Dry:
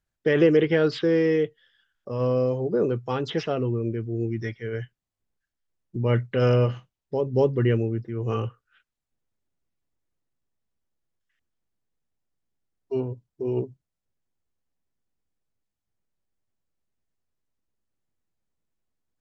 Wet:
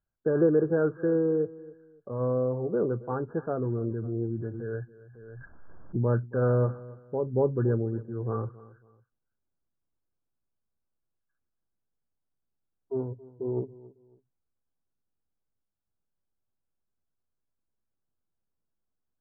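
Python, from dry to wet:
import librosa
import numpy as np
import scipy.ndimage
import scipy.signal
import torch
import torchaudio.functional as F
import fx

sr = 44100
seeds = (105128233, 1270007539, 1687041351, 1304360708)

y = fx.brickwall_lowpass(x, sr, high_hz=1700.0)
y = fx.echo_feedback(y, sr, ms=275, feedback_pct=29, wet_db=-19.5)
y = fx.pre_swell(y, sr, db_per_s=27.0, at=(3.66, 6.15))
y = F.gain(torch.from_numpy(y), -4.0).numpy()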